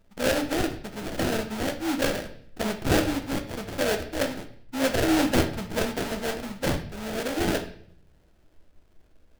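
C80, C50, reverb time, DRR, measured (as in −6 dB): 15.0 dB, 11.0 dB, 0.60 s, 6.0 dB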